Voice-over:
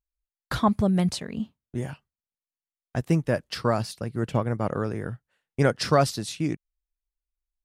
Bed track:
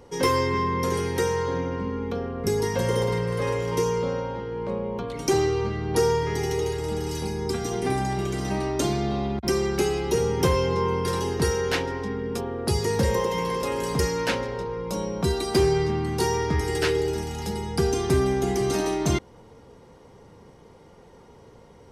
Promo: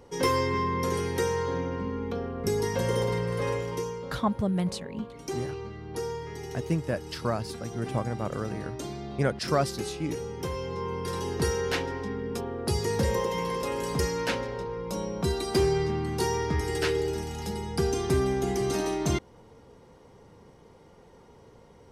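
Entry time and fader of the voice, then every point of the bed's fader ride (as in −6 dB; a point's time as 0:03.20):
3.60 s, −5.0 dB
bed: 0:03.54 −3 dB
0:04.00 −12 dB
0:10.48 −12 dB
0:11.43 −3.5 dB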